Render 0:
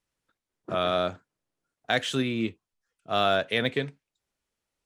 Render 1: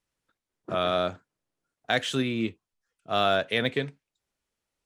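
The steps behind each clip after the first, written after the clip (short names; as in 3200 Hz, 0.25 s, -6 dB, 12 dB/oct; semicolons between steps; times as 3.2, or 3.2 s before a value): nothing audible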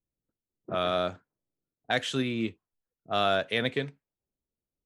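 low-pass opened by the level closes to 380 Hz, open at -24 dBFS; gain -2 dB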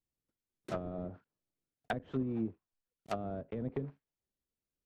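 block floating point 3-bit; treble ducked by the level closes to 330 Hz, closed at -24.5 dBFS; gain -3.5 dB; MP3 56 kbps 44100 Hz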